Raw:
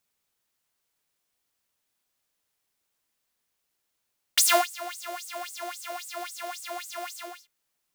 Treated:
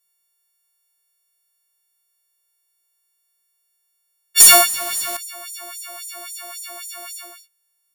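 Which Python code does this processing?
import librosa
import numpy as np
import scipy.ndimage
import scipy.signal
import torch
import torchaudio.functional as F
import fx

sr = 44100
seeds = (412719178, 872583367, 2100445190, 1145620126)

y = fx.freq_snap(x, sr, grid_st=4)
y = fx.leveller(y, sr, passes=3, at=(4.4, 5.17))
y = y * 10.0 ** (-5.0 / 20.0)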